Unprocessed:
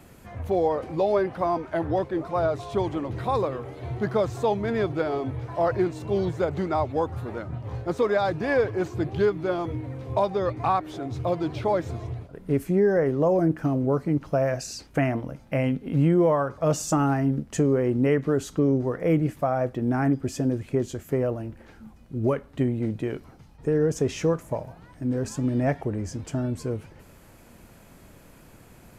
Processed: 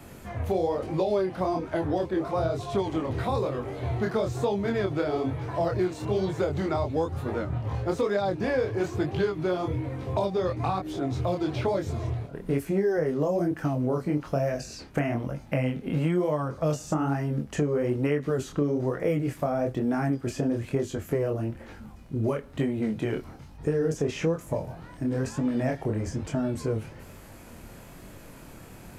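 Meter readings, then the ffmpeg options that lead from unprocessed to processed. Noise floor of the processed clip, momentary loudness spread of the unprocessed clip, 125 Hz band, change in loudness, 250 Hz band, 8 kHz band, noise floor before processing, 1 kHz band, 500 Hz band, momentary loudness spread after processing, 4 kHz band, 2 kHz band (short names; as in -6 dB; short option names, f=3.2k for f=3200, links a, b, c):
-46 dBFS, 10 LU, -1.5 dB, -2.5 dB, -2.5 dB, -5.0 dB, -51 dBFS, -4.0 dB, -2.5 dB, 8 LU, 0.0 dB, -2.0 dB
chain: -filter_complex "[0:a]flanger=delay=20:depth=7.6:speed=1.1,acrossover=split=500|3100[a][b][c];[a]acompressor=threshold=-34dB:ratio=4[d];[b]acompressor=threshold=-40dB:ratio=4[e];[c]acompressor=threshold=-53dB:ratio=4[f];[d][e][f]amix=inputs=3:normalize=0,volume=7.5dB"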